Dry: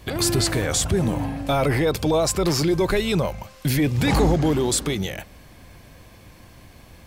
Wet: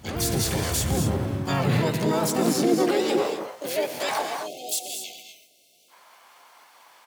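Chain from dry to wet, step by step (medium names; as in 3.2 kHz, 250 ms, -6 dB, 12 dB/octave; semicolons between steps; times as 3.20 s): spectral selection erased 4.22–5.91 s, 380–2600 Hz; dynamic bell 640 Hz, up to -3 dB, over -34 dBFS, Q 0.77; gated-style reverb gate 270 ms rising, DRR 5 dB; harmony voices -4 st -7 dB, +5 st -2 dB, +12 st -4 dB; high-pass sweep 70 Hz -> 920 Hz, 0.89–4.43 s; trim -7.5 dB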